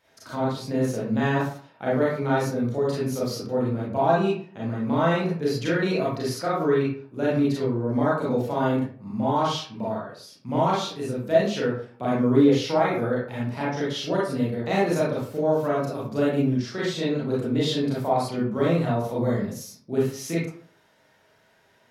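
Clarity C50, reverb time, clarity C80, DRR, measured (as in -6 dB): 0.5 dB, 0.50 s, 6.5 dB, -7.5 dB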